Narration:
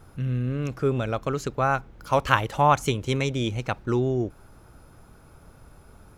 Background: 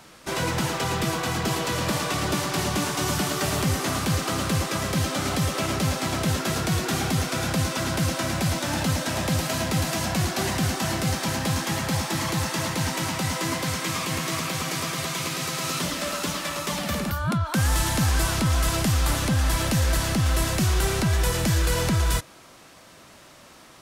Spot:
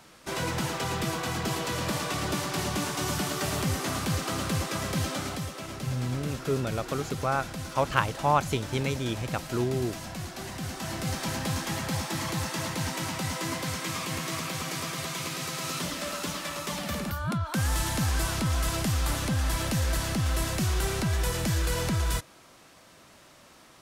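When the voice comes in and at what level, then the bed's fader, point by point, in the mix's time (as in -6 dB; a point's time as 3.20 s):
5.65 s, -4.5 dB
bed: 5.12 s -4.5 dB
5.55 s -12.5 dB
10.49 s -12.5 dB
11.20 s -5 dB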